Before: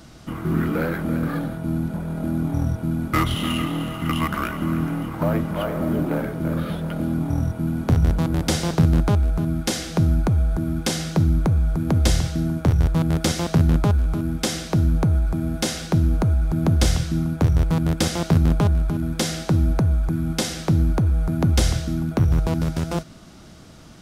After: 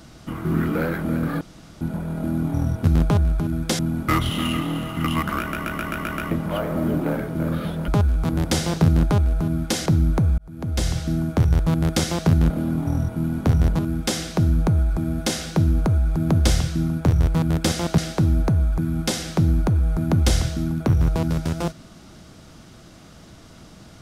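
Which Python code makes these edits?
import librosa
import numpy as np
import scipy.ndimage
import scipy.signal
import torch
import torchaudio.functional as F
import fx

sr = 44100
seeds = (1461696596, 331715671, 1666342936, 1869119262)

y = fx.edit(x, sr, fx.room_tone_fill(start_s=1.41, length_s=0.4),
    fx.stutter_over(start_s=4.45, slice_s=0.13, count=7),
    fx.swap(start_s=6.93, length_s=1.29, other_s=13.78, other_length_s=0.37),
    fx.cut(start_s=9.83, length_s=1.31),
    fx.fade_in_span(start_s=11.66, length_s=0.73),
    fx.move(start_s=18.34, length_s=0.95, to_s=2.84), tone=tone)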